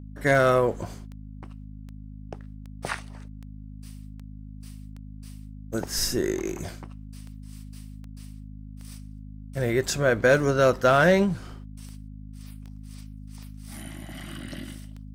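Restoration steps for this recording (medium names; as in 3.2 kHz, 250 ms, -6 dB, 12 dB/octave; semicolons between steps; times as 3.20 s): clip repair -11 dBFS; de-click; de-hum 51.9 Hz, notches 5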